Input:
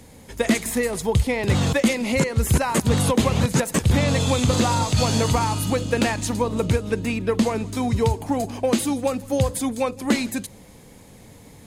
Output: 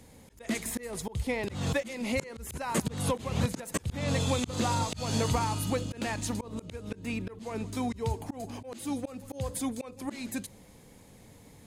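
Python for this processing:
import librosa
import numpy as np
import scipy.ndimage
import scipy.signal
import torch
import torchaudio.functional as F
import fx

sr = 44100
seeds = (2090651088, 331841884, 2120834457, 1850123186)

y = fx.auto_swell(x, sr, attack_ms=214.0)
y = F.gain(torch.from_numpy(y), -7.5).numpy()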